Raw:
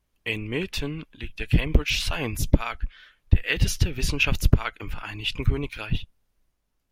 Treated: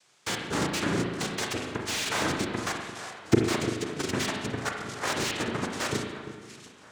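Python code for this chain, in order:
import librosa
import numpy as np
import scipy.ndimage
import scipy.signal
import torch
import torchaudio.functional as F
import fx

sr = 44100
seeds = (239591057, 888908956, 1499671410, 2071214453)

p1 = fx.recorder_agc(x, sr, target_db=-8.0, rise_db_per_s=27.0, max_gain_db=30)
p2 = fx.highpass(p1, sr, hz=260.0, slope=6)
p3 = fx.high_shelf(p2, sr, hz=4800.0, db=-10.5)
p4 = fx.level_steps(p3, sr, step_db=14)
p5 = fx.quant_dither(p4, sr, seeds[0], bits=10, dither='triangular')
p6 = fx.noise_vocoder(p5, sr, seeds[1], bands=3)
p7 = p6 + fx.echo_alternate(p6, sr, ms=344, hz=1900.0, feedback_pct=58, wet_db=-12.5, dry=0)
p8 = fx.rev_spring(p7, sr, rt60_s=1.2, pass_ms=(35, 43), chirp_ms=25, drr_db=1.5)
y = fx.slew_limit(p8, sr, full_power_hz=160.0)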